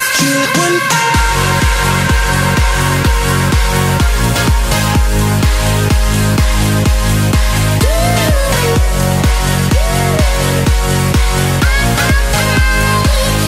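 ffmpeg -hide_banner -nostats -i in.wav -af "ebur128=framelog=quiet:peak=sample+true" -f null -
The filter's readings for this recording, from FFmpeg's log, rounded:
Integrated loudness:
  I:         -11.9 LUFS
  Threshold: -21.9 LUFS
Loudness range:
  LRA:         0.7 LU
  Threshold: -32.1 LUFS
  LRA low:   -12.3 LUFS
  LRA high:  -11.5 LUFS
Sample peak:
  Peak:       -1.8 dBFS
True peak:
  Peak:       -1.8 dBFS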